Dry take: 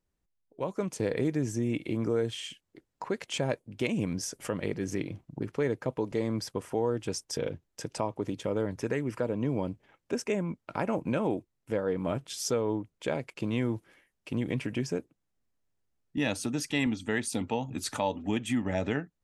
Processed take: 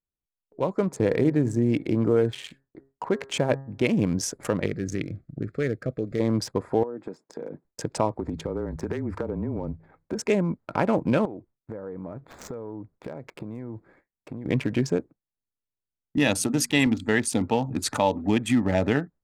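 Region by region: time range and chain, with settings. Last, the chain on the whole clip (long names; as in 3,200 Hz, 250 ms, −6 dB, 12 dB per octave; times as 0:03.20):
0:00.82–0:04.02: parametric band 4,700 Hz −3.5 dB 1.7 octaves + hum removal 135.5 Hz, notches 14
0:04.66–0:06.20: Butterworth band-reject 920 Hz, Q 1.6 + parametric band 430 Hz −6 dB 2.5 octaves
0:06.83–0:07.65: high-pass filter 180 Hz 24 dB per octave + downward compressor 16 to 1, threshold −36 dBFS + high-shelf EQ 3,600 Hz −10 dB
0:08.15–0:10.20: hum removal 63.51 Hz, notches 3 + downward compressor 5 to 1, threshold −32 dBFS + frequency shifter −29 Hz
0:11.25–0:14.46: running median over 9 samples + downward compressor 8 to 1, threshold −39 dBFS
0:16.20–0:17.15: high-shelf EQ 9,600 Hz +11 dB + mains-hum notches 60/120/180/240 Hz + one half of a high-frequency compander decoder only
whole clip: adaptive Wiener filter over 15 samples; noise gate with hold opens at −53 dBFS; level +7.5 dB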